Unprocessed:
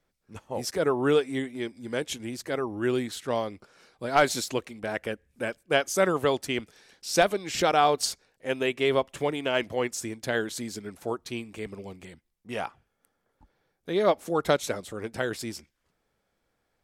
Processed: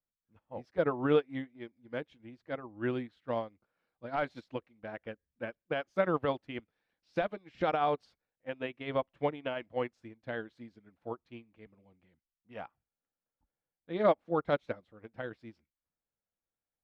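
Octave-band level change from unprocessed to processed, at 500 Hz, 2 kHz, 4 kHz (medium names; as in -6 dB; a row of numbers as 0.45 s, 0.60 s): -7.0 dB, -10.0 dB, -16.0 dB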